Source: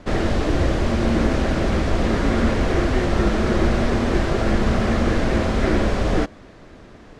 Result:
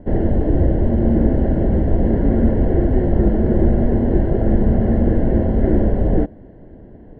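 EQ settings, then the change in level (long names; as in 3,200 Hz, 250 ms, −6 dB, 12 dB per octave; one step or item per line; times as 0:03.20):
moving average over 36 samples
high-frequency loss of the air 300 metres
+5.0 dB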